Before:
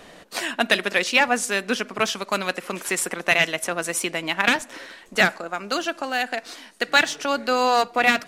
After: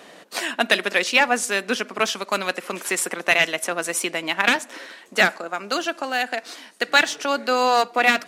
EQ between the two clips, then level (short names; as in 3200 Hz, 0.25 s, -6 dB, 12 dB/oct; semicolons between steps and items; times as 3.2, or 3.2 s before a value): HPF 210 Hz 12 dB/oct; +1.0 dB